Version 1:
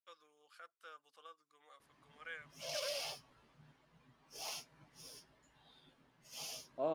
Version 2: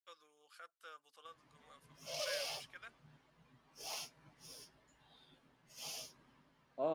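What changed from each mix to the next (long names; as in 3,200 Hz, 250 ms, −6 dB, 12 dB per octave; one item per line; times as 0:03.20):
first voice: add high-shelf EQ 4,300 Hz +5 dB
background: entry −0.55 s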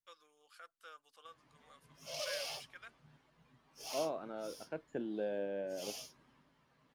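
second voice: entry −2.85 s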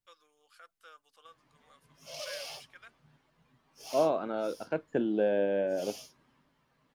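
second voice +10.5 dB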